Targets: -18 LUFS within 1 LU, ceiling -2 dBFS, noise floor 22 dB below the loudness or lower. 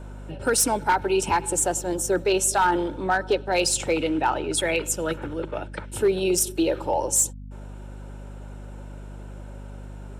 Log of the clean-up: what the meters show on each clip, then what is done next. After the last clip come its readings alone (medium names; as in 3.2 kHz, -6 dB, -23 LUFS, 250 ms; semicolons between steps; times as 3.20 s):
clipped samples 0.3%; clipping level -14.0 dBFS; hum 50 Hz; highest harmonic 250 Hz; hum level -36 dBFS; loudness -23.5 LUFS; peak level -14.0 dBFS; loudness target -18.0 LUFS
-> clip repair -14 dBFS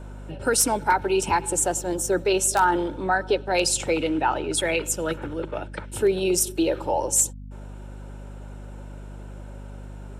clipped samples 0.0%; hum 50 Hz; highest harmonic 250 Hz; hum level -36 dBFS
-> hum notches 50/100/150/200/250 Hz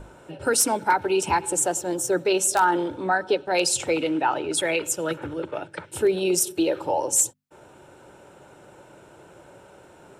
hum not found; loudness -23.0 LUFS; peak level -6.0 dBFS; loudness target -18.0 LUFS
-> trim +5 dB; peak limiter -2 dBFS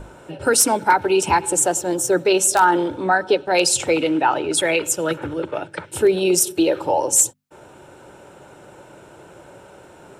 loudness -18.0 LUFS; peak level -2.0 dBFS; noise floor -46 dBFS